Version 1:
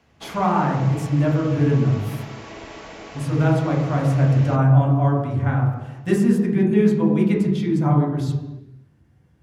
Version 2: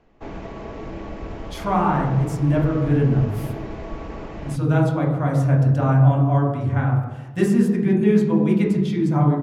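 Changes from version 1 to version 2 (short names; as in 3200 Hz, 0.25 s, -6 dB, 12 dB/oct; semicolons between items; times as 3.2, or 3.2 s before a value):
speech: entry +1.30 s; background: add tilt -4 dB/oct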